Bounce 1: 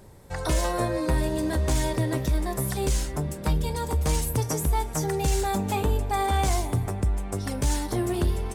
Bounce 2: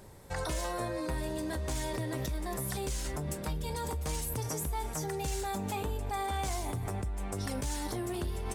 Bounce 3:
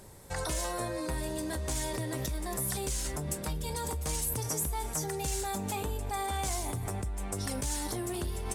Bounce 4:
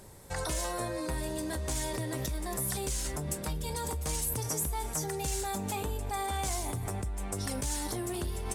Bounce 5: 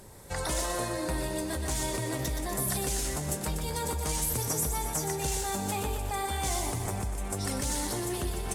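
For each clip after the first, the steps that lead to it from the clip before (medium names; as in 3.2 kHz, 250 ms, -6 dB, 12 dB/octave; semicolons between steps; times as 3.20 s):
bass shelf 500 Hz -4 dB; in parallel at -2 dB: compressor with a negative ratio -34 dBFS, ratio -0.5; on the sum: trim -8.5 dB
peaking EQ 9.4 kHz +6.5 dB 1.6 oct
no audible change
on a send: thinning echo 122 ms, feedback 60%, high-pass 160 Hz, level -7 dB; on the sum: trim +1.5 dB; AAC 64 kbps 48 kHz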